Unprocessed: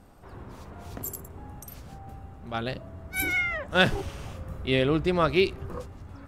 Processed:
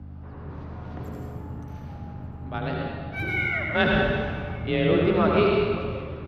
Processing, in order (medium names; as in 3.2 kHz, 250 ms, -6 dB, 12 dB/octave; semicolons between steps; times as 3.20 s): distance through air 290 m; delay 1187 ms -23 dB; reverberation RT60 2.0 s, pre-delay 71 ms, DRR -2 dB; hum 50 Hz, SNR 13 dB; frequency shift +30 Hz